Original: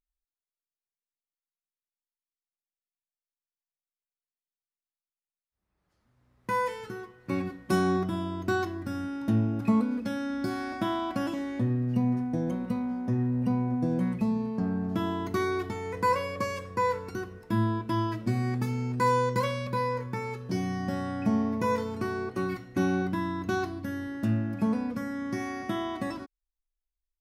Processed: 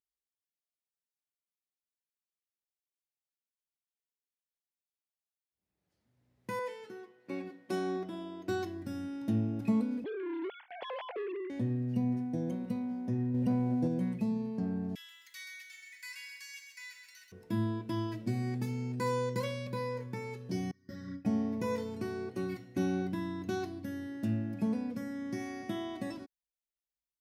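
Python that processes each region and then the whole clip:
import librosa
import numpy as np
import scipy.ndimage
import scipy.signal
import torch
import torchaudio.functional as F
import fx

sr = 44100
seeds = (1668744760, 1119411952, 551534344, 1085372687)

y = fx.chain(x, sr, fx.highpass(hz=300.0, slope=12),
    fx.high_shelf(hz=5700.0, db=-9.5), at=(6.59, 8.49))
y = fx.chain(y, sr, fx.sine_speech(),
    fx.gate_hold(open_db=-30.0, close_db=-36.0, hold_ms=71.0, range_db=-21, attack_ms=1.4, release_ms=100.0),
    fx.transformer_sat(knee_hz=750.0), at=(10.04, 11.5))
y = fx.chain(y, sr, fx.peak_eq(hz=560.0, db=5.0, octaves=0.3),
    fx.leveller(passes=1), at=(13.34, 13.88))
y = fx.chain(y, sr, fx.cheby1_highpass(hz=1800.0, order=4),
    fx.echo_crushed(ms=130, feedback_pct=55, bits=11, wet_db=-6.0), at=(14.95, 17.32))
y = fx.chain(y, sr, fx.gate_hold(open_db=-22.0, close_db=-30.0, hold_ms=71.0, range_db=-21, attack_ms=1.4, release_ms=100.0),
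    fx.fixed_phaser(hz=2800.0, stages=6),
    fx.ensemble(), at=(20.71, 21.25))
y = scipy.signal.sosfilt(scipy.signal.butter(2, 94.0, 'highpass', fs=sr, output='sos'), y)
y = fx.peak_eq(y, sr, hz=1200.0, db=-10.0, octaves=0.88)
y = y * librosa.db_to_amplitude(-4.5)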